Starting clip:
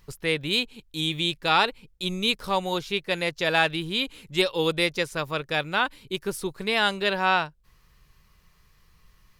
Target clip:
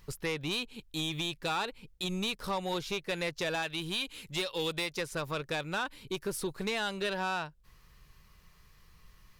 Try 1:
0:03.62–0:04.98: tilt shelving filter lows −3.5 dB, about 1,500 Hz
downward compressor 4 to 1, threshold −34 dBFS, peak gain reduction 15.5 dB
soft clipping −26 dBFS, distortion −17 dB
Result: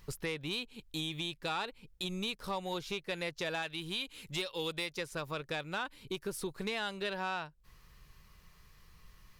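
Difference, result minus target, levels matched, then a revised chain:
downward compressor: peak gain reduction +5 dB
0:03.62–0:04.98: tilt shelving filter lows −3.5 dB, about 1,500 Hz
downward compressor 4 to 1, threshold −27 dBFS, peak gain reduction 10 dB
soft clipping −26 dBFS, distortion −12 dB

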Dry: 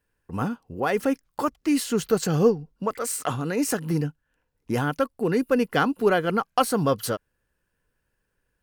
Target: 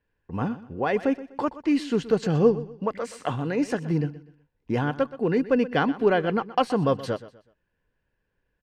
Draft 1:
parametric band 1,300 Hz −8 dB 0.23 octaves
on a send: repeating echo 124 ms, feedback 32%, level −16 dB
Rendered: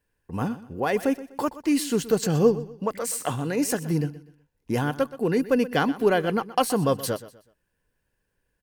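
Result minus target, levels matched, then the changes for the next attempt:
4,000 Hz band +3.0 dB
add first: low-pass filter 3,400 Hz 12 dB per octave

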